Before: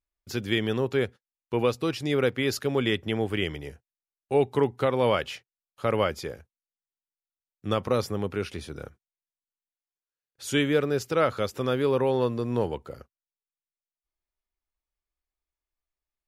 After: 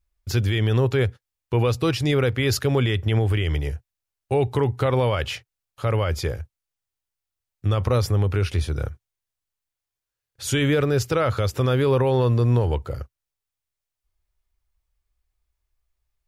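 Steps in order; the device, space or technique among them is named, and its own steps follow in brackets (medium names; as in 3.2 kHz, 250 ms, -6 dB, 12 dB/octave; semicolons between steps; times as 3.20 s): car stereo with a boomy subwoofer (resonant low shelf 140 Hz +10.5 dB, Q 1.5; peak limiter -19.5 dBFS, peak gain reduction 9.5 dB); trim +7 dB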